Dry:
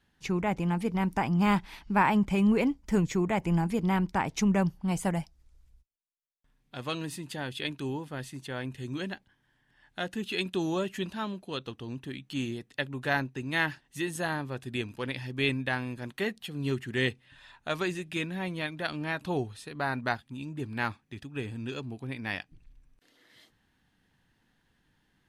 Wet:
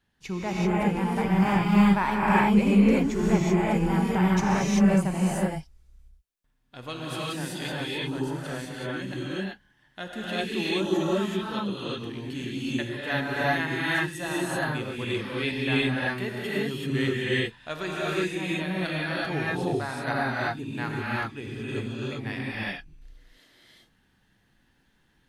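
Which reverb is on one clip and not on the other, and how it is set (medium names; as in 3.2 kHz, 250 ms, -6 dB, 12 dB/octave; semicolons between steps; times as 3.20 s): gated-style reverb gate 410 ms rising, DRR -7 dB; trim -3.5 dB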